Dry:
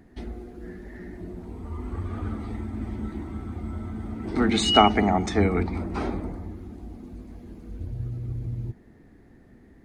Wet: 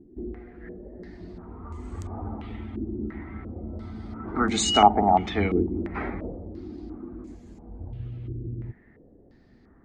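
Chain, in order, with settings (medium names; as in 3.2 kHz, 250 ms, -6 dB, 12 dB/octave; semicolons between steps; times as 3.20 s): 6.55–7.35 s: peaking EQ 320 Hz +13 dB 0.61 oct; clicks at 2.02 s, -18 dBFS; step-sequenced low-pass 2.9 Hz 350–7200 Hz; trim -4 dB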